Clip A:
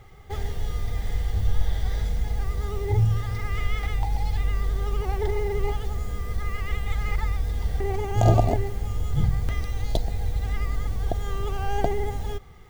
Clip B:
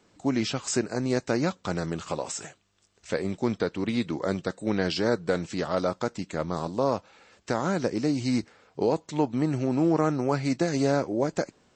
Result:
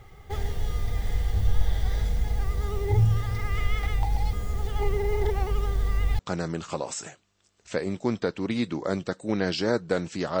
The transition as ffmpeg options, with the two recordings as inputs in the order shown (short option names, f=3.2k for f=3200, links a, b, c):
-filter_complex "[0:a]apad=whole_dur=10.4,atrim=end=10.4,asplit=2[a][b];[a]atrim=end=4.332[c];[b]atrim=start=4.328:end=6.192,asetpts=PTS-STARTPTS,areverse[d];[1:a]atrim=start=1.568:end=5.78[e];[c][d]acrossfade=d=0.004:c1=hsin:c2=hsin[f];[f][e]acrossfade=d=0.004:c1=hsin:c2=hsin"